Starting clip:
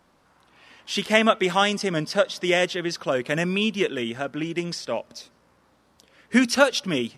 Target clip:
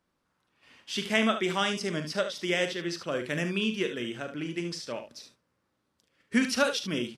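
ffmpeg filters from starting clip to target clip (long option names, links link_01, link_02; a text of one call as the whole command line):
ffmpeg -i in.wav -filter_complex "[0:a]agate=range=-9dB:threshold=-52dB:ratio=16:detection=peak,equalizer=frequency=780:width_type=o:width=0.97:gain=-5.5,asplit=2[link_01][link_02];[link_02]aecho=0:1:41|73:0.299|0.316[link_03];[link_01][link_03]amix=inputs=2:normalize=0,volume=-6dB" out.wav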